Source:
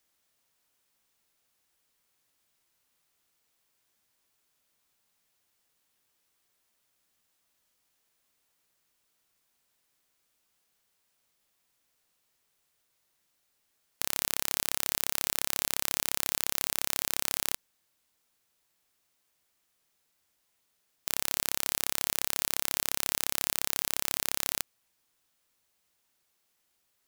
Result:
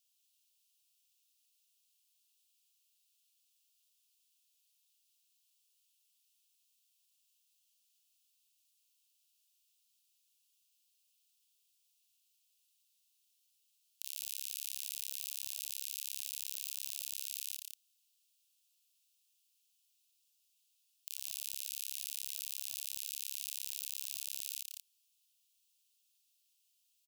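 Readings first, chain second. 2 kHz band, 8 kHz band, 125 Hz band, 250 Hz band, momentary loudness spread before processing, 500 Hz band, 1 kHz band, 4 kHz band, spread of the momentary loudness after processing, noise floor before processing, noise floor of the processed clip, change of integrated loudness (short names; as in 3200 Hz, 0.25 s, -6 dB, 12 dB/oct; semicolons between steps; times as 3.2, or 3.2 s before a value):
-18.5 dB, -10.0 dB, under -40 dB, under -40 dB, 3 LU, under -40 dB, under -40 dB, -10.0 dB, 4 LU, -76 dBFS, -77 dBFS, -10.5 dB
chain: steep high-pass 2600 Hz 72 dB/oct; limiter -14 dBFS, peak gain reduction 9.5 dB; tapped delay 40/45/164/190 ms -20/-8/-6.5/-7 dB; gain -2.5 dB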